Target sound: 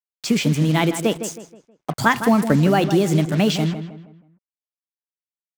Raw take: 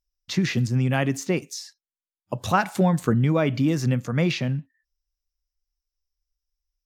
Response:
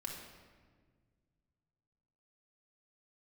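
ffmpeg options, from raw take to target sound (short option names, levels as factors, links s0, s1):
-filter_complex "[0:a]acrusher=bits=5:mix=0:aa=0.5,asetrate=54243,aresample=44100,asplit=2[s0][s1];[s1]adelay=159,lowpass=f=2600:p=1,volume=0.316,asplit=2[s2][s3];[s3]adelay=159,lowpass=f=2600:p=1,volume=0.39,asplit=2[s4][s5];[s5]adelay=159,lowpass=f=2600:p=1,volume=0.39,asplit=2[s6][s7];[s7]adelay=159,lowpass=f=2600:p=1,volume=0.39[s8];[s0][s2][s4][s6][s8]amix=inputs=5:normalize=0,volume=1.58"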